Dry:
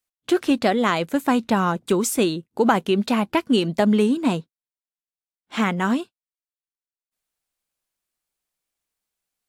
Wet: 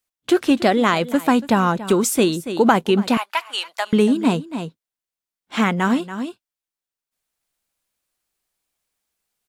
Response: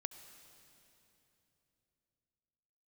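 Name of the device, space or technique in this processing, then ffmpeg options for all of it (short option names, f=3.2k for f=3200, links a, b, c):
ducked delay: -filter_complex "[0:a]asplit=3[a][b][c];[b]adelay=283,volume=-2dB[d];[c]apad=whole_len=430887[e];[d][e]sidechaincompress=threshold=-39dB:ratio=4:attack=32:release=299[f];[a][f]amix=inputs=2:normalize=0,asettb=1/sr,asplit=3[g][h][i];[g]atrim=end=3.174[j];[h]atrim=start=3.17:end=3.93,asetpts=PTS-STARTPTS,afade=t=in:d=0.004:c=qsin,afade=t=out:st=0.756:d=0.004:c=qsin,highpass=f=840:w=0.5412,highpass=f=840:w=1.3066[k];[i]atrim=start=3.926[l];[j][k]acrossfade=d=0.004:c1=hsin:c2=qsin[m];[m][l]acrossfade=d=0.004:c1=qsin:c2=hsin,volume=3dB"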